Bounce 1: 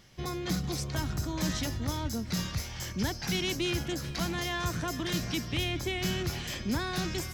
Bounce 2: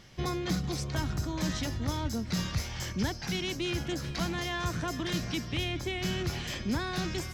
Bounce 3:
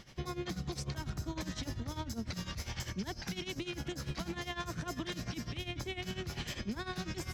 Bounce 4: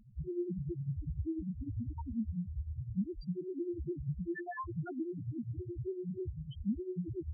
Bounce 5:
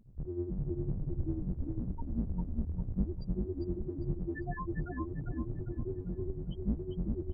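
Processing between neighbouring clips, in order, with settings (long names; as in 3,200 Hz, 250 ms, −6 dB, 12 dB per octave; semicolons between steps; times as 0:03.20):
speech leveller 0.5 s; high-shelf EQ 10,000 Hz −10 dB
downward compressor, threshold −31 dBFS, peak gain reduction 6.5 dB; brickwall limiter −30 dBFS, peak gain reduction 7 dB; amplitude tremolo 10 Hz, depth 81%; level +2.5 dB
spectral peaks only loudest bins 1; level +10.5 dB
sub-octave generator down 2 octaves, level +2 dB; repeating echo 400 ms, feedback 33%, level −4 dB; level −1.5 dB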